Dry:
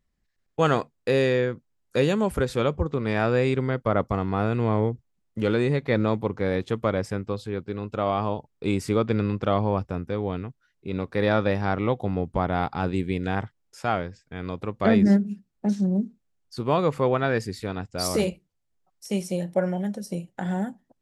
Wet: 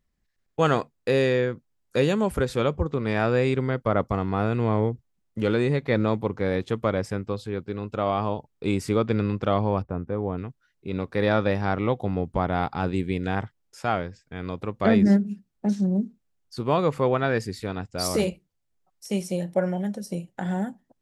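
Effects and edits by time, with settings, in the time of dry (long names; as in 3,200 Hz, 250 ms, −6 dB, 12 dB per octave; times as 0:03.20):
0:09.82–0:10.38: drawn EQ curve 1,100 Hz 0 dB, 1,800 Hz −6 dB, 5,400 Hz −21 dB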